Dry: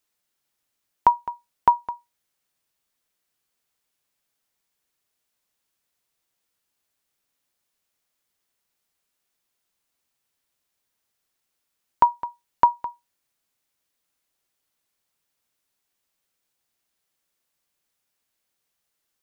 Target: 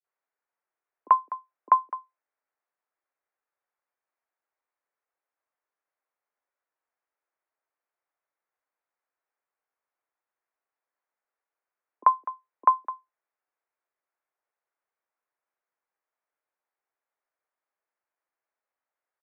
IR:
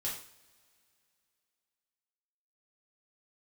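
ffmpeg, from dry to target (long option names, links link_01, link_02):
-filter_complex "[0:a]highpass=frequency=180:width_type=q:width=0.5412,highpass=frequency=180:width_type=q:width=1.307,lowpass=frequency=2500:width_type=q:width=0.5176,lowpass=frequency=2500:width_type=q:width=0.7071,lowpass=frequency=2500:width_type=q:width=1.932,afreqshift=80,acrossover=split=370 2000:gain=0.224 1 0.0708[link_01][link_02][link_03];[link_01][link_02][link_03]amix=inputs=3:normalize=0,acrossover=split=330[link_04][link_05];[link_05]adelay=40[link_06];[link_04][link_06]amix=inputs=2:normalize=0,volume=-1.5dB"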